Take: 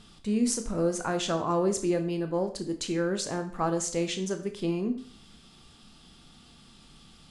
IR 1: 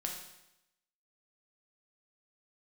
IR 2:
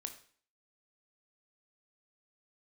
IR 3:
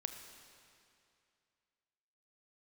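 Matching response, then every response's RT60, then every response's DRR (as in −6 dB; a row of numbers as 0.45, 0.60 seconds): 2; 0.85, 0.50, 2.5 seconds; 0.5, 6.5, 6.0 decibels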